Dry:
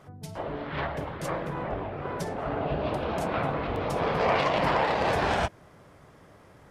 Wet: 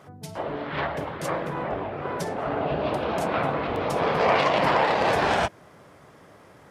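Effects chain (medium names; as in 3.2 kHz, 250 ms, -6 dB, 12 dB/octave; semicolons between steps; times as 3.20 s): high-pass 160 Hz 6 dB/octave; trim +4 dB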